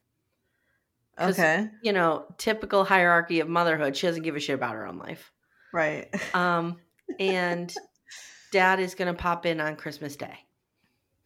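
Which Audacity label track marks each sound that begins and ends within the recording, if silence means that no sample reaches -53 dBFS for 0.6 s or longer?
1.140000	10.420000	sound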